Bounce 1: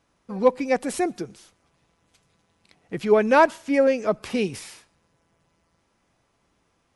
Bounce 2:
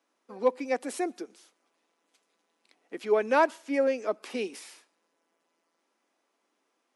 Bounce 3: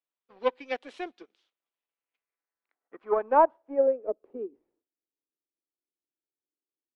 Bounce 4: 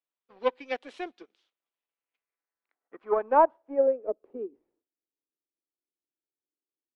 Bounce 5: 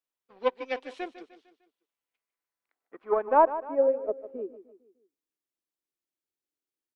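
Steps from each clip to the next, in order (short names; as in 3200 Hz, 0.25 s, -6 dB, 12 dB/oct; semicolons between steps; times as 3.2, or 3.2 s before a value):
steep high-pass 250 Hz 36 dB/oct; gain -6.5 dB
tone controls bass -9 dB, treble 0 dB; power-law curve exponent 1.4; low-pass sweep 3400 Hz -> 340 Hz, 1.73–4.58
nothing audible
feedback echo 0.151 s, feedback 46%, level -14 dB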